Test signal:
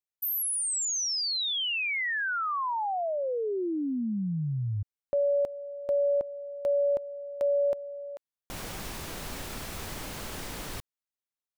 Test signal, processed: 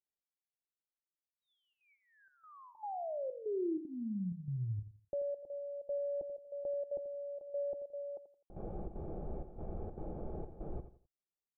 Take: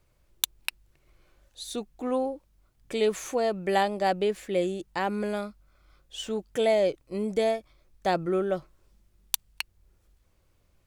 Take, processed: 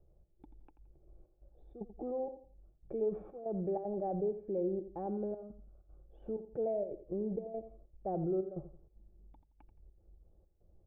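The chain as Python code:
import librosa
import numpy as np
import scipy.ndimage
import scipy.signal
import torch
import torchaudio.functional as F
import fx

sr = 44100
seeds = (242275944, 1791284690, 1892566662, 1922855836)

p1 = fx.peak_eq(x, sr, hz=110.0, db=-6.5, octaves=0.59)
p2 = fx.over_compress(p1, sr, threshold_db=-37.0, ratio=-1.0)
p3 = p1 + (p2 * 10.0 ** (-1.0 / 20.0))
p4 = fx.step_gate(p3, sr, bpm=191, pattern='xxx..xxxx.xxx', floor_db=-12.0, edge_ms=4.5)
p5 = fx.fixed_phaser(p4, sr, hz=1400.0, stages=8)
p6 = 10.0 ** (-17.0 / 20.0) * np.tanh(p5 / 10.0 ** (-17.0 / 20.0))
p7 = fx.formant_cascade(p6, sr, vowel='u')
p8 = fx.air_absorb(p7, sr, metres=400.0)
p9 = fx.echo_feedback(p8, sr, ms=85, feedback_pct=30, wet_db=-12.0)
y = p9 * 10.0 ** (8.5 / 20.0)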